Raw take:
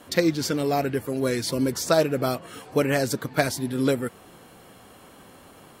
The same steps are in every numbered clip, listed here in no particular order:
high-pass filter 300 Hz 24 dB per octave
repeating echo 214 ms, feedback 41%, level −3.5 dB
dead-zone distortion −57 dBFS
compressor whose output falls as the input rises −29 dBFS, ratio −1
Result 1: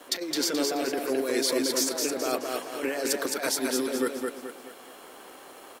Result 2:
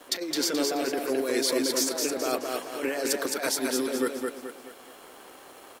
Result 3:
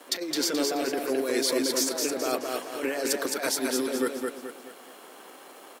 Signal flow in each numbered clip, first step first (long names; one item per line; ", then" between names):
high-pass filter, then compressor whose output falls as the input rises, then dead-zone distortion, then repeating echo
high-pass filter, then dead-zone distortion, then compressor whose output falls as the input rises, then repeating echo
dead-zone distortion, then high-pass filter, then compressor whose output falls as the input rises, then repeating echo